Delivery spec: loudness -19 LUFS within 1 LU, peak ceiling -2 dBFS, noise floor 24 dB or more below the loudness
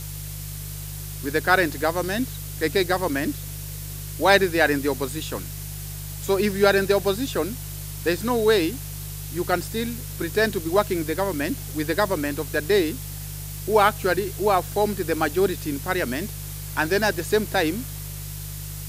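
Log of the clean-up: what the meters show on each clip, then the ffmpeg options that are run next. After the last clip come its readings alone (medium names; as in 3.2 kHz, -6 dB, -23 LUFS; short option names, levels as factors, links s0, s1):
hum 50 Hz; highest harmonic 150 Hz; hum level -33 dBFS; noise floor -34 dBFS; noise floor target -48 dBFS; loudness -24.0 LUFS; peak level -1.5 dBFS; loudness target -19.0 LUFS
-> -af "bandreject=f=50:t=h:w=4,bandreject=f=100:t=h:w=4,bandreject=f=150:t=h:w=4"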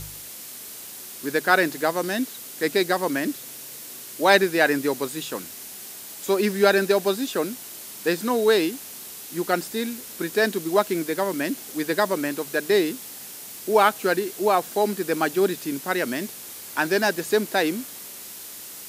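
hum not found; noise floor -39 dBFS; noise floor target -48 dBFS
-> -af "afftdn=nr=9:nf=-39"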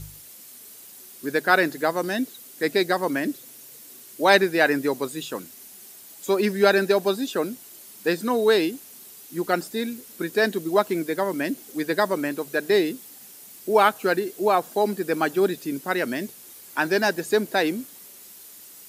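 noise floor -46 dBFS; noise floor target -48 dBFS
-> -af "afftdn=nr=6:nf=-46"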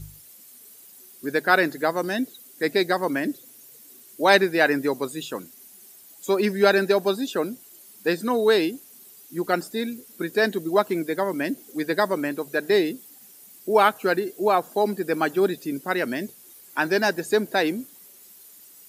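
noise floor -49 dBFS; loudness -23.5 LUFS; peak level -2.0 dBFS; loudness target -19.0 LUFS
-> -af "volume=1.68,alimiter=limit=0.794:level=0:latency=1"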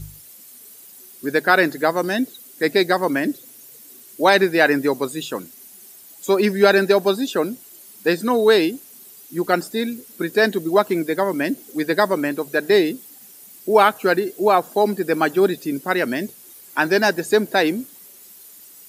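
loudness -19.5 LUFS; peak level -2.0 dBFS; noise floor -45 dBFS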